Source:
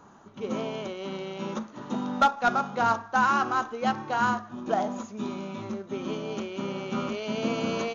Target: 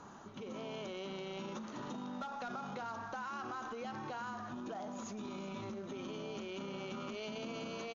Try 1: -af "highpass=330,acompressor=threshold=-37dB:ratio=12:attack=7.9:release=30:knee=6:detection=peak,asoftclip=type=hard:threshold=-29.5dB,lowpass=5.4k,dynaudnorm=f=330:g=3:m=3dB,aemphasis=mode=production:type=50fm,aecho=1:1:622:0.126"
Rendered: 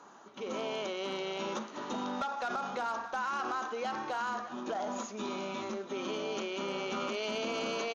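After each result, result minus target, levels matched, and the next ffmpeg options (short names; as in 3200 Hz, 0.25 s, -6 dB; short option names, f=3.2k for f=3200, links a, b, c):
echo 0.241 s late; compressor: peak gain reduction -8.5 dB; 250 Hz band -4.0 dB
-af "highpass=330,acompressor=threshold=-37dB:ratio=12:attack=7.9:release=30:knee=6:detection=peak,asoftclip=type=hard:threshold=-29.5dB,lowpass=5.4k,dynaudnorm=f=330:g=3:m=3dB,aemphasis=mode=production:type=50fm,aecho=1:1:381:0.126"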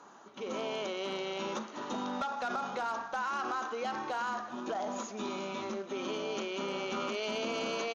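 compressor: peak gain reduction -8.5 dB; 250 Hz band -4.0 dB
-af "highpass=330,acompressor=threshold=-46dB:ratio=12:attack=7.9:release=30:knee=6:detection=peak,asoftclip=type=hard:threshold=-29.5dB,lowpass=5.4k,dynaudnorm=f=330:g=3:m=3dB,aemphasis=mode=production:type=50fm,aecho=1:1:381:0.126"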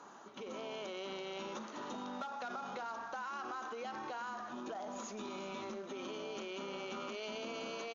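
250 Hz band -3.5 dB
-af "acompressor=threshold=-46dB:ratio=12:attack=7.9:release=30:knee=6:detection=peak,asoftclip=type=hard:threshold=-29.5dB,lowpass=5.4k,dynaudnorm=f=330:g=3:m=3dB,aemphasis=mode=production:type=50fm,aecho=1:1:381:0.126"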